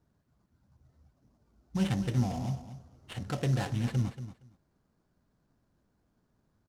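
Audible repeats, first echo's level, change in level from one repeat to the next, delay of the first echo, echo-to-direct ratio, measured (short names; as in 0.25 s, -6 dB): 2, -12.0 dB, -16.5 dB, 0.233 s, -12.0 dB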